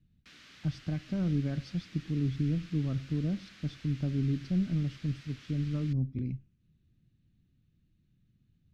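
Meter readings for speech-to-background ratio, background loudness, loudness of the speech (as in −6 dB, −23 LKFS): 20.0 dB, −53.0 LKFS, −33.0 LKFS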